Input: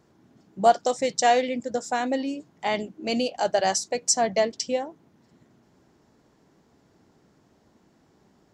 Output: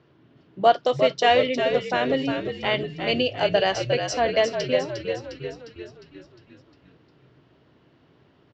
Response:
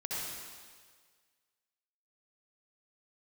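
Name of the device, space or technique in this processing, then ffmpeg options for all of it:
frequency-shifting delay pedal into a guitar cabinet: -filter_complex "[0:a]asplit=8[link_01][link_02][link_03][link_04][link_05][link_06][link_07][link_08];[link_02]adelay=355,afreqshift=-55,volume=-7dB[link_09];[link_03]adelay=710,afreqshift=-110,volume=-12.4dB[link_10];[link_04]adelay=1065,afreqshift=-165,volume=-17.7dB[link_11];[link_05]adelay=1420,afreqshift=-220,volume=-23.1dB[link_12];[link_06]adelay=1775,afreqshift=-275,volume=-28.4dB[link_13];[link_07]adelay=2130,afreqshift=-330,volume=-33.8dB[link_14];[link_08]adelay=2485,afreqshift=-385,volume=-39.1dB[link_15];[link_01][link_09][link_10][link_11][link_12][link_13][link_14][link_15]amix=inputs=8:normalize=0,highpass=77,equalizer=frequency=130:width_type=q:width=4:gain=5,equalizer=frequency=210:width_type=q:width=4:gain=-10,equalizer=frequency=810:width_type=q:width=4:gain=-7,equalizer=frequency=2900:width_type=q:width=4:gain=6,lowpass=frequency=4000:width=0.5412,lowpass=frequency=4000:width=1.3066,volume=3.5dB"

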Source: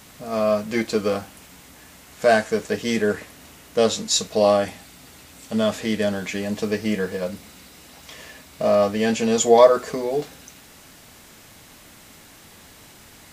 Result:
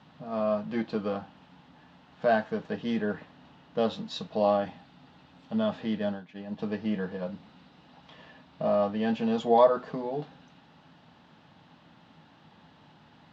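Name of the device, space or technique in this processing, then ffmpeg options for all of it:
guitar cabinet: -filter_complex "[0:a]asplit=3[link_01][link_02][link_03];[link_01]afade=type=out:start_time=5.98:duration=0.02[link_04];[link_02]agate=range=-33dB:threshold=-20dB:ratio=3:detection=peak,afade=type=in:start_time=5.98:duration=0.02,afade=type=out:start_time=6.58:duration=0.02[link_05];[link_03]afade=type=in:start_time=6.58:duration=0.02[link_06];[link_04][link_05][link_06]amix=inputs=3:normalize=0,highpass=94,equalizer=frequency=160:width_type=q:width=4:gain=10,equalizer=frequency=250:width_type=q:width=4:gain=4,equalizer=frequency=410:width_type=q:width=4:gain=-4,equalizer=frequency=860:width_type=q:width=4:gain=7,equalizer=frequency=2200:width_type=q:width=4:gain=-9,lowpass=frequency=3600:width=0.5412,lowpass=frequency=3600:width=1.3066,volume=-8.5dB"

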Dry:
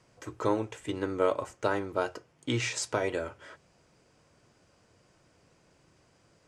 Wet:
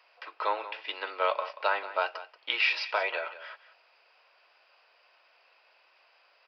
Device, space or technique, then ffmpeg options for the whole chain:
musical greeting card: -filter_complex "[0:a]aresample=11025,aresample=44100,highpass=frequency=670:width=0.5412,highpass=frequency=670:width=1.3066,equalizer=frequency=2600:width_type=o:width=0.26:gain=9,asettb=1/sr,asplit=3[link_01][link_02][link_03];[link_01]atrim=end=0.804[link_04];[link_02]atrim=start=0.8:end=1.53,asetpts=PTS-STARTPTS,afade=type=in:duration=0.004:curve=qsin,afade=type=out:start_time=0.726:duration=0.004:curve=qsin,bass=frequency=250:gain=0,treble=frequency=4000:gain=6[link_05];[link_03]atrim=start=1.526[link_06];[link_04][link_05]acrossfade=duration=0.004:curve1=hsin:curve2=qsin[link_07];[link_07][link_06]acrossfade=duration=0.004:curve1=qsin:curve2=hsin,aecho=1:1:183:0.188,volume=4.5dB"

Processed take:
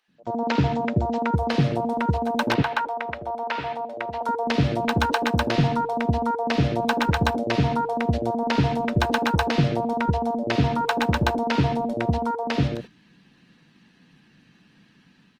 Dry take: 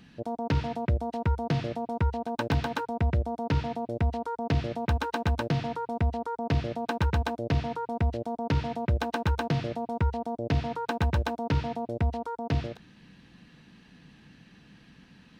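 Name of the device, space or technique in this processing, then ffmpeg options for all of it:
video call: -filter_complex "[0:a]asettb=1/sr,asplit=3[link_01][link_02][link_03];[link_01]atrim=end=2.544[link_04];[link_02]atrim=start=2.54:end=4.21,asetpts=PTS-STARTPTS,afade=type=in:duration=0.004:curve=qsin,afade=type=out:start_time=1.666:duration=0.004:curve=qsin,acrossover=split=520 3400:gain=0.1 1 0.224[link_05][link_06][link_07];[link_05][link_06][link_07]amix=inputs=3:normalize=0[link_08];[link_03]atrim=start=4.206[link_09];[link_04][link_08]acrossfade=duration=0.004:curve1=hsin:curve2=qsin[link_10];[link_10][link_09]acrossfade=duration=0.004:curve1=qsin:curve2=hsin,highpass=140,acrossover=split=540[link_11][link_12];[link_11]adelay=80[link_13];[link_13][link_12]amix=inputs=2:normalize=0,dynaudnorm=framelen=110:gausssize=5:maxgain=10dB,agate=range=-11dB:threshold=-35dB:ratio=16:detection=peak" -ar 48000 -c:a libopus -b:a 24k

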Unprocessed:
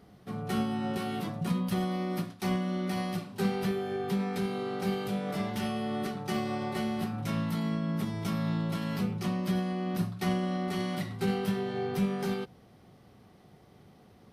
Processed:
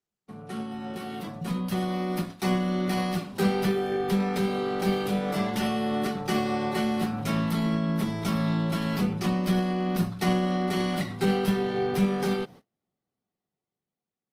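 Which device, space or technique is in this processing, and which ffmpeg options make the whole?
video call: -af "highpass=140,dynaudnorm=framelen=490:gausssize=7:maxgain=10dB,agate=range=-33dB:threshold=-42dB:ratio=16:detection=peak,volume=-4dB" -ar 48000 -c:a libopus -b:a 24k

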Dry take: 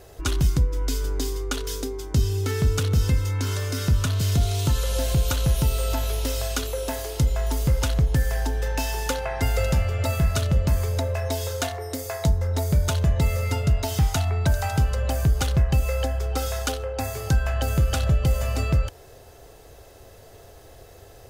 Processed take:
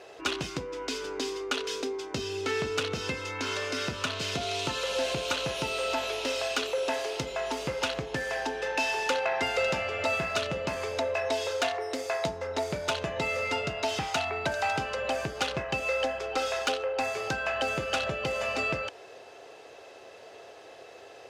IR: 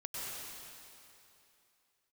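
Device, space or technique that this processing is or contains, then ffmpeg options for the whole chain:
intercom: -af "highpass=380,lowpass=4700,equalizer=frequency=2600:width_type=o:width=0.3:gain=6,asoftclip=type=tanh:threshold=-21dB,volume=2.5dB"

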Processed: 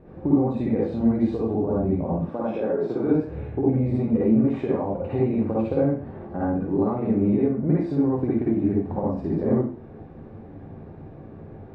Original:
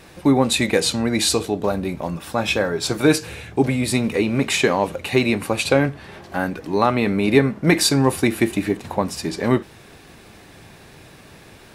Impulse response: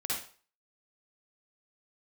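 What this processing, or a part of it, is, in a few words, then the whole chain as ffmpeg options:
television next door: -filter_complex "[0:a]asettb=1/sr,asplit=3[link_01][link_02][link_03];[link_01]atrim=end=2.184[link_04];[link_02]atrim=start=2.18:end=3.07,asetpts=PTS-STARTPTS,afade=type=in:duration=0.004:curve=qsin,afade=type=out:start_time=0.886:duration=0.004:curve=qsin,highpass=230[link_05];[link_03]atrim=start=3.066[link_06];[link_04][link_05]acrossfade=duration=0.004:curve1=hsin:curve2=qsin[link_07];[link_07][link_06]acrossfade=duration=0.004:curve1=qsin:curve2=hsin,acompressor=threshold=-22dB:ratio=6,lowpass=530[link_08];[1:a]atrim=start_sample=2205[link_09];[link_08][link_09]afir=irnorm=-1:irlink=0,volume=2.5dB"

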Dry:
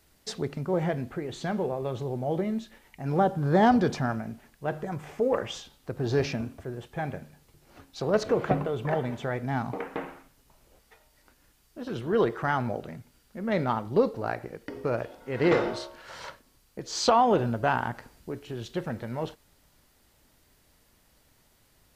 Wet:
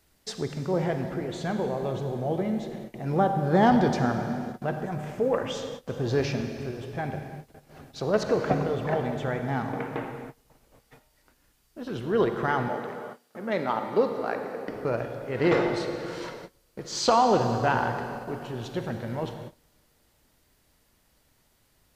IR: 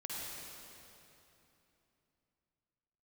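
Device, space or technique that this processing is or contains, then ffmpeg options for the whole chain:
keyed gated reverb: -filter_complex "[0:a]asplit=3[link_01][link_02][link_03];[1:a]atrim=start_sample=2205[link_04];[link_02][link_04]afir=irnorm=-1:irlink=0[link_05];[link_03]apad=whole_len=968208[link_06];[link_05][link_06]sidechaingate=range=-28dB:threshold=-56dB:ratio=16:detection=peak,volume=-3dB[link_07];[link_01][link_07]amix=inputs=2:normalize=0,asettb=1/sr,asplit=3[link_08][link_09][link_10];[link_08]atrim=end=12.684[link_11];[link_09]atrim=start=12.68:end=14.68,asetpts=PTS-STARTPTS,afade=type=in:duration=0.004:curve=qsin,afade=type=out:start_time=1.996:duration=0.004:curve=qsin,highpass=250[link_12];[link_10]atrim=start=14.676[link_13];[link_11][link_12]acrossfade=duration=0.004:curve1=hsin:curve2=qsin[link_14];[link_14][link_13]acrossfade=duration=0.004:curve1=qsin:curve2=hsin,volume=-2.5dB"

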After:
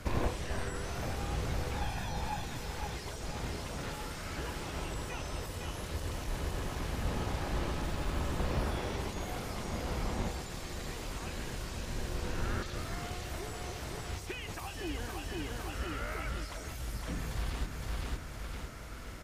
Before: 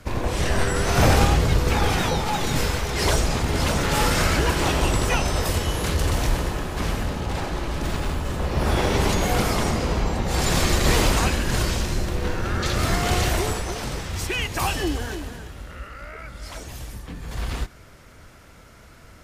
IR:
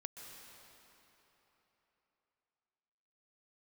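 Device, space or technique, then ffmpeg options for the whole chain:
de-esser from a sidechain: -filter_complex "[0:a]asettb=1/sr,asplit=3[link_01][link_02][link_03];[link_01]atrim=end=1.814[link_04];[link_02]atrim=start=1.81:end=2.44,asetpts=PTS-STARTPTS,afade=type=in:duration=0.004:curve=qsin,afade=type=out:start_time=0.626:duration=0.004:curve=qsin,aecho=1:1:1.2:0.67,atrim=end_sample=27783[link_05];[link_03]atrim=start=2.436[link_06];[link_04][link_05]acrossfade=duration=0.004:curve1=hsin:curve2=qsin[link_07];[link_07][link_06]acrossfade=duration=0.004:curve1=qsin:curve2=hsin,aecho=1:1:510|1020|1530|2040|2550:0.422|0.186|0.0816|0.0359|0.0158,asplit=2[link_08][link_09];[link_09]highpass=4000,apad=whole_len=865620[link_10];[link_08][link_10]sidechaincompress=threshold=-47dB:ratio=16:attack=2.2:release=61"

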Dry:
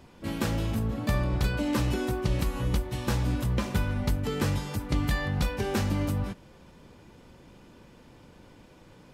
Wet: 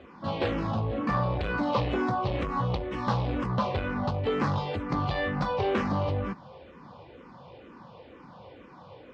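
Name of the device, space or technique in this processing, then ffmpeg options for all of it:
barber-pole phaser into a guitar amplifier: -filter_complex "[0:a]asplit=2[link_01][link_02];[link_02]afreqshift=-2.1[link_03];[link_01][link_03]amix=inputs=2:normalize=1,asoftclip=type=tanh:threshold=-27dB,highpass=81,equalizer=frequency=520:width_type=q:width=4:gain=7,equalizer=frequency=760:width_type=q:width=4:gain=7,equalizer=frequency=1100:width_type=q:width=4:gain=10,lowpass=frequency=4400:width=0.5412,lowpass=frequency=4400:width=1.3066,volume=5dB"

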